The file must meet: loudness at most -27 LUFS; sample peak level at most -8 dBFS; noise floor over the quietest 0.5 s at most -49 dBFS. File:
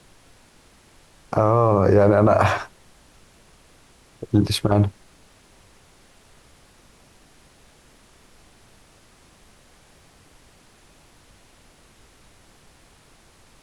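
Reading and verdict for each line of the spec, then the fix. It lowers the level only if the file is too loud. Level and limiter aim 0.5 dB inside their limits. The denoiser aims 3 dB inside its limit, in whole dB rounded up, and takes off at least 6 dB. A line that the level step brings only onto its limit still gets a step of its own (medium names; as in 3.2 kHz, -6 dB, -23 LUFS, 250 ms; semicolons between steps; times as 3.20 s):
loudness -19.0 LUFS: fail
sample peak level -5.5 dBFS: fail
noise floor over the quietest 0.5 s -54 dBFS: pass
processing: trim -8.5 dB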